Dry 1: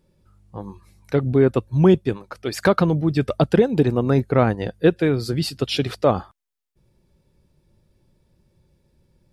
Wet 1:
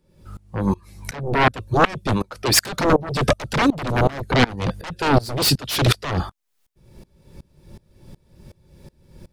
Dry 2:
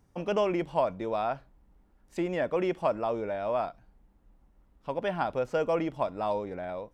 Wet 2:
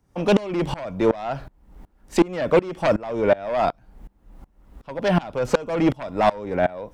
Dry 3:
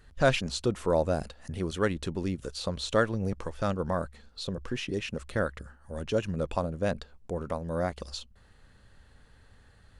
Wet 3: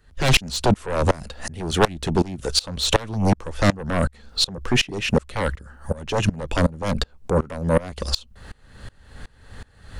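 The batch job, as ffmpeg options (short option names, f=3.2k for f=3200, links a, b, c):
-filter_complex "[0:a]acrossover=split=250|3000[a][b][c];[b]acompressor=threshold=-33dB:ratio=2[d];[a][d][c]amix=inputs=3:normalize=0,aeval=exprs='0.398*sin(PI/2*7.94*val(0)/0.398)':c=same,aeval=exprs='val(0)*pow(10,-25*if(lt(mod(-2.7*n/s,1),2*abs(-2.7)/1000),1-mod(-2.7*n/s,1)/(2*abs(-2.7)/1000),(mod(-2.7*n/s,1)-2*abs(-2.7)/1000)/(1-2*abs(-2.7)/1000))/20)':c=same"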